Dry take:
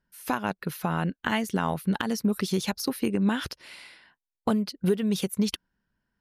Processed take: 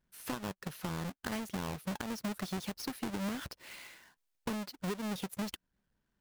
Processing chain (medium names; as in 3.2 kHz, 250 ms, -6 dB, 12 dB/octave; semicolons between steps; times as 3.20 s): square wave that keeps the level; compression 2:1, threshold -35 dBFS, peak gain reduction 10.5 dB; trim -7 dB